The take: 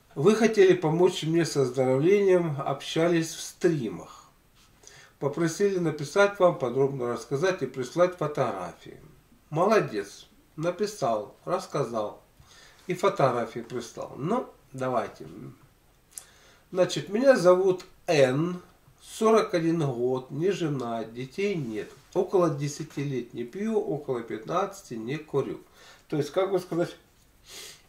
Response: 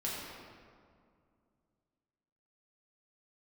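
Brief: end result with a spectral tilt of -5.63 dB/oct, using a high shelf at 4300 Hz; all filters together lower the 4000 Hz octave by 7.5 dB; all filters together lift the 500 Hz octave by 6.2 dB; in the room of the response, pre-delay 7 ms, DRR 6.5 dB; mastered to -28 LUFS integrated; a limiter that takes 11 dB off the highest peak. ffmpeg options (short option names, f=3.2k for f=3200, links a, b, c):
-filter_complex "[0:a]equalizer=f=500:t=o:g=8,equalizer=f=4k:t=o:g=-6.5,highshelf=f=4.3k:g=-5.5,alimiter=limit=-12dB:level=0:latency=1,asplit=2[a][b];[1:a]atrim=start_sample=2205,adelay=7[c];[b][c]afir=irnorm=-1:irlink=0,volume=-10.5dB[d];[a][d]amix=inputs=2:normalize=0,volume=-4.5dB"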